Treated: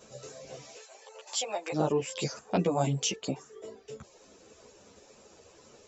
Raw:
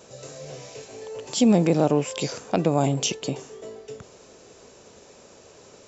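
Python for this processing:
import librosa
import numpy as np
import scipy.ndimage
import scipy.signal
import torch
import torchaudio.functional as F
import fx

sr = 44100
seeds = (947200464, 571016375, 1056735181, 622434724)

y = fx.dereverb_blind(x, sr, rt60_s=0.7)
y = fx.highpass(y, sr, hz=600.0, slope=24, at=(0.75, 1.72), fade=0.02)
y = fx.ensemble(y, sr)
y = F.gain(torch.from_numpy(y), -1.0).numpy()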